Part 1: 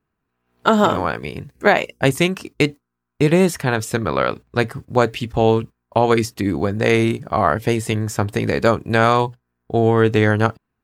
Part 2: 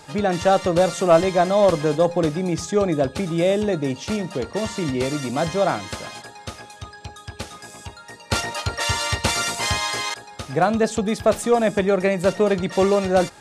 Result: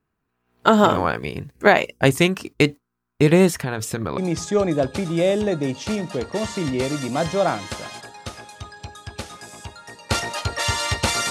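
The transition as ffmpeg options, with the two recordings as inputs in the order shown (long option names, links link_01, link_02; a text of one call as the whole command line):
ffmpeg -i cue0.wav -i cue1.wav -filter_complex "[0:a]asettb=1/sr,asplit=3[link_01][link_02][link_03];[link_01]atrim=end=3.594[link_04];[link_02]atrim=start=3.59:end=4.18,asetpts=PTS-STARTPTS,afade=type=in:duration=0.004:curve=qsin,afade=type=out:start_time=0.586:duration=0.004:curve=qsin,acompressor=threshold=-20dB:ratio=5:attack=3.2:release=140:knee=1:detection=peak[link_05];[link_03]atrim=start=4.176[link_06];[link_04][link_05]acrossfade=duration=0.004:curve1=hsin:curve2=qsin[link_07];[link_07][link_06]acrossfade=duration=0.004:curve1=qsin:curve2=hsin,apad=whole_dur=11.3,atrim=end=11.3,atrim=end=4.182[link_08];[1:a]atrim=start=2.388:end=9.51[link_09];[link_08][link_09]acrossfade=duration=0.004:curve1=hsin:curve2=hsin" out.wav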